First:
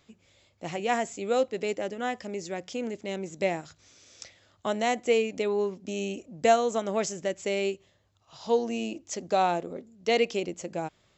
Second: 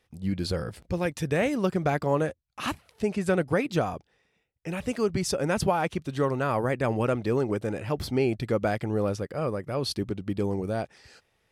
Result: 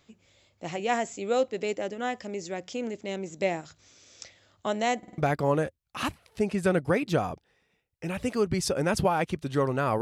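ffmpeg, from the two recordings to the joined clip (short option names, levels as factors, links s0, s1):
-filter_complex "[0:a]apad=whole_dur=10.01,atrim=end=10.01,asplit=4[s0][s1][s2][s3];[s0]atrim=end=5.032[s4];[s1]atrim=start=4.978:end=5.032[s5];[s2]atrim=start=4.978:end=5.032[s6];[s3]atrim=start=4.978:end=5.032[s7];[1:a]atrim=start=1.808:end=6.64[s8];[s4][s5]acrossfade=d=0.004:c1=hsin:c2=hsin[s9];[s9][s6]acrossfade=d=0.004:c1=hsin:c2=hsin[s10];[s10][s7]acrossfade=d=0.004:c1=hsin:c2=hsin[s11];[s11][s8]acrossfade=d=0.004:c1=hsin:c2=hsin"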